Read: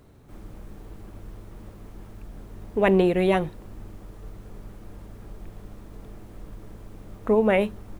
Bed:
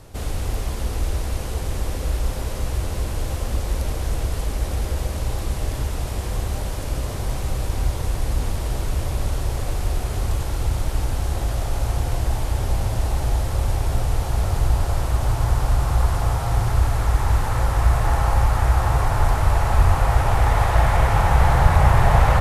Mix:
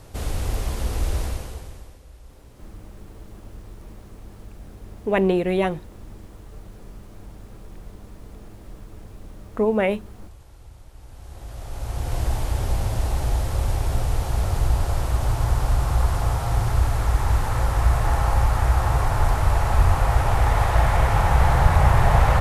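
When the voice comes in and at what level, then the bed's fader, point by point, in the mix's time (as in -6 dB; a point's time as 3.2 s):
2.30 s, -0.5 dB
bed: 1.24 s -0.5 dB
2.04 s -23 dB
10.94 s -23 dB
12.2 s -1.5 dB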